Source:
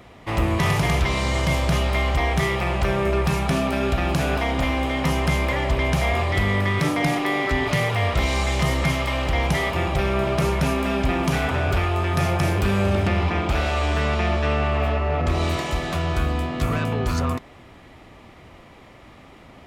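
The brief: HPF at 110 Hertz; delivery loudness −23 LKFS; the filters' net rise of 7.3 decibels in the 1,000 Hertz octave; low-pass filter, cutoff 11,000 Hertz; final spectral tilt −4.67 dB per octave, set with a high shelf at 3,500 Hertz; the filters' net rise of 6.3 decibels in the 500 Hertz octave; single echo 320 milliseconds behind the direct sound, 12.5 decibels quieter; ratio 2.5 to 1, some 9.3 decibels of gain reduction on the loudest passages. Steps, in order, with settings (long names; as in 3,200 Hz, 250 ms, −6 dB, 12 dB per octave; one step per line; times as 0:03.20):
high-pass filter 110 Hz
low-pass filter 11,000 Hz
parametric band 500 Hz +6 dB
parametric band 1,000 Hz +8 dB
high-shelf EQ 3,500 Hz −5.5 dB
downward compressor 2.5 to 1, threshold −29 dBFS
single-tap delay 320 ms −12.5 dB
level +5 dB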